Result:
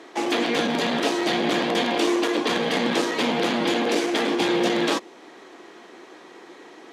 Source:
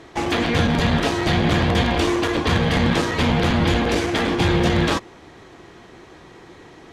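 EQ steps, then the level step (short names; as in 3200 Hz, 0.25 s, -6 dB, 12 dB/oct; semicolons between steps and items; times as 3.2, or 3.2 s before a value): HPF 250 Hz 24 dB/oct; dynamic EQ 1400 Hz, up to -4 dB, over -39 dBFS, Q 0.92; 0.0 dB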